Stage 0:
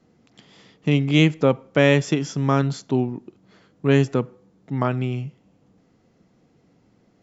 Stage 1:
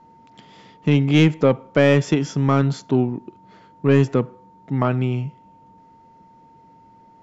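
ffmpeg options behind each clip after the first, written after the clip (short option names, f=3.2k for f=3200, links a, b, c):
-af "aeval=exprs='val(0)+0.00251*sin(2*PI*910*n/s)':c=same,acontrast=70,highshelf=f=4.5k:g=-7,volume=-3dB"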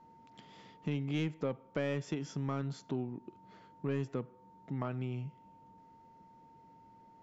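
-af "acompressor=threshold=-31dB:ratio=2,volume=-9dB"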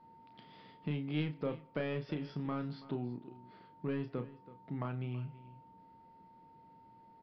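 -filter_complex "[0:a]asplit=2[a][b];[b]adelay=33,volume=-8dB[c];[a][c]amix=inputs=2:normalize=0,aecho=1:1:328:0.133,aresample=11025,aresample=44100,volume=-2dB"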